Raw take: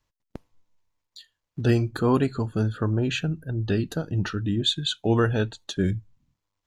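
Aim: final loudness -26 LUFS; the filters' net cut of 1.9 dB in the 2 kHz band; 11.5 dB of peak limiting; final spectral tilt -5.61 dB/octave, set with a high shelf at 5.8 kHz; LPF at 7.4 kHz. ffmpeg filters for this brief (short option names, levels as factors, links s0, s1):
-af "lowpass=7400,equalizer=f=2000:t=o:g=-3.5,highshelf=f=5800:g=6,volume=1.78,alimiter=limit=0.158:level=0:latency=1"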